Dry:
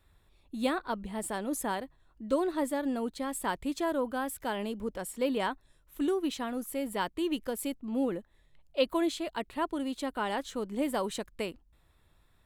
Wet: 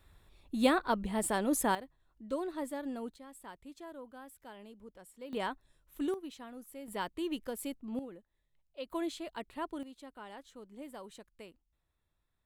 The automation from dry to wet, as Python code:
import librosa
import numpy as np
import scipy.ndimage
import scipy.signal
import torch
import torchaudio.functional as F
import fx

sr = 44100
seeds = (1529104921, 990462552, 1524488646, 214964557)

y = fx.gain(x, sr, db=fx.steps((0.0, 3.0), (1.75, -7.5), (3.16, -17.0), (5.33, -4.5), (6.14, -13.0), (6.88, -5.0), (7.99, -15.5), (8.9, -7.0), (9.83, -16.0)))